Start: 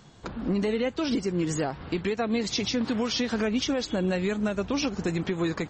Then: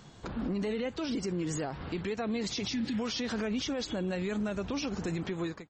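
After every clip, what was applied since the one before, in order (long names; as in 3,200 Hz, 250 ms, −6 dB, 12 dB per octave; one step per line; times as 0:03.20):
fade-out on the ending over 0.55 s
healed spectral selection 0:02.76–0:02.97, 370–1,600 Hz before
brickwall limiter −26 dBFS, peak gain reduction 9 dB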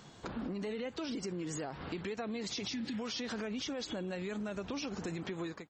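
low-shelf EQ 110 Hz −10 dB
downward compressor 4 to 1, threshold −36 dBFS, peak gain reduction 5.5 dB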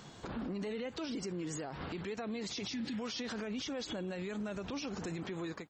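brickwall limiter −34.5 dBFS, peak gain reduction 7.5 dB
level +2.5 dB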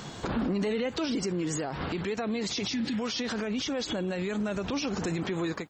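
speech leveller 2 s
level +8.5 dB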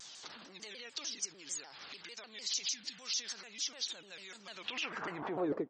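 band-pass filter sweep 5,600 Hz → 400 Hz, 0:04.41–0:05.60
high-frequency loss of the air 60 metres
pitch modulation by a square or saw wave saw down 6.7 Hz, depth 250 cents
level +5 dB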